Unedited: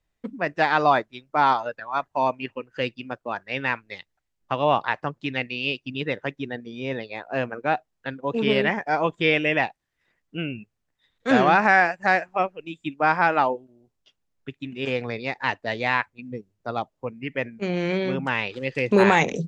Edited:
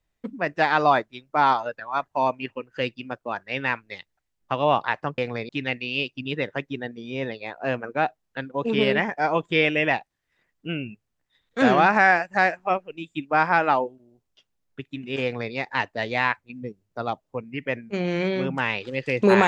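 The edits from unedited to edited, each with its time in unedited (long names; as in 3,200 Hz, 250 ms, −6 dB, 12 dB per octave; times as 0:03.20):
0:14.92–0:15.23: duplicate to 0:05.18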